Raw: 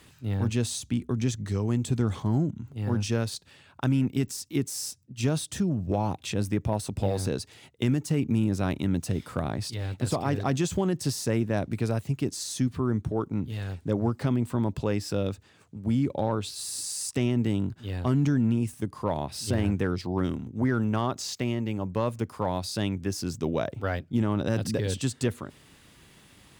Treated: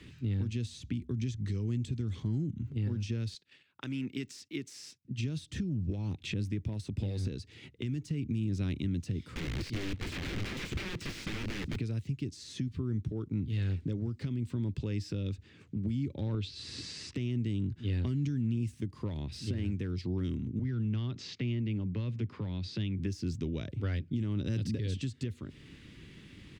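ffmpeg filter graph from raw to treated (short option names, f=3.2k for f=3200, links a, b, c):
-filter_complex "[0:a]asettb=1/sr,asplit=3[a][b][c];[a]atrim=end=3.344[d];[b]atrim=start=3.34:end=5.05,asetpts=PTS-STARTPTS,afade=t=in:d=0.004:c=qsin,afade=t=out:st=1.706:d=0.004:c=qsin,agate=range=-14dB:threshold=-54dB:ratio=16:release=100:detection=peak,highpass=f=840:p=1[e];[c]atrim=start=5.046[f];[d][e]acrossfade=d=0.004:c1=hsin:c2=qsin[g];[g][f]acrossfade=d=0.004:c1=qsin:c2=hsin,asettb=1/sr,asplit=3[h][i][j];[h]atrim=end=9.334[k];[i]atrim=start=9.33:end=11.77,asetpts=PTS-STARTPTS,afade=t=in:d=0.004:c=qsin,afade=t=out:st=2.436:d=0.004:c=qsin,aeval=exprs='(mod(28.2*val(0)+1,2)-1)/28.2':c=same,aecho=1:1:423:0.0794,atrim=end_sample=107604[l];[j]atrim=start=11.766[m];[k][l]acrossfade=d=0.004:c1=hsin:c2=qsin[n];[n][m]acrossfade=d=0.004:c1=qsin:c2=hsin,asettb=1/sr,asplit=3[o][p][q];[o]atrim=end=16.344[r];[p]atrim=start=16.34:end=17.15,asetpts=PTS-STARTPTS,afade=t=in:d=0.004:c=qsin,afade=t=out:st=0.806:d=0.004:c=qsin,lowpass=4.5k,acontrast=77[s];[q]atrim=start=17.146[t];[r][s]acrossfade=d=0.004:c1=hsin:c2=qsin[u];[u][t]acrossfade=d=0.004:c1=qsin:c2=hsin,asettb=1/sr,asplit=3[v][w][x];[v]atrim=end=20.594[y];[w]atrim=start=20.59:end=22.99,asetpts=PTS-STARTPTS,afade=t=in:d=0.004:c=qsin,afade=t=out:st=2.396:d=0.004:c=qsin,highpass=110,lowpass=3.9k,acrossover=split=140|3000[z][aa][ab];[aa]acompressor=threshold=-42dB:ratio=3:attack=3.2:release=140:knee=2.83:detection=peak[ac];[z][ac][ab]amix=inputs=3:normalize=0[ad];[x]atrim=start=22.986[ae];[y][ad]acrossfade=d=0.004:c1=hsin:c2=qsin[af];[af][ae]acrossfade=d=0.004:c1=qsin:c2=hsin,acrossover=split=100|3300[ag][ah][ai];[ag]acompressor=threshold=-39dB:ratio=4[aj];[ah]acompressor=threshold=-38dB:ratio=4[ak];[ai]acompressor=threshold=-41dB:ratio=4[al];[aj][ak][al]amix=inputs=3:normalize=0,firequalizer=gain_entry='entry(330,0);entry(690,-17);entry(2100,-3);entry(11000,-23)':delay=0.05:min_phase=1,alimiter=level_in=6.5dB:limit=-24dB:level=0:latency=1:release=440,volume=-6.5dB,volume=6dB"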